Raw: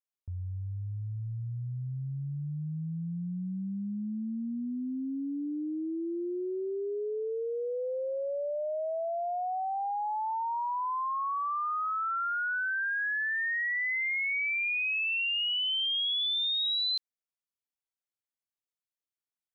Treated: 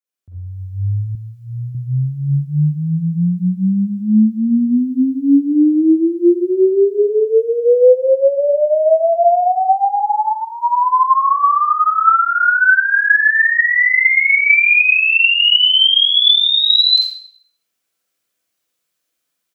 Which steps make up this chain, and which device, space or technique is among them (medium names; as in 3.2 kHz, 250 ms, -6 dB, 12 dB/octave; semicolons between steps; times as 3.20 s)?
band-stop 920 Hz, Q 5.7; far laptop microphone (reverberation RT60 0.55 s, pre-delay 37 ms, DRR -4 dB; high-pass 110 Hz; level rider gain up to 15.5 dB); 1.15–1.75 s: bass shelf 180 Hz -11 dB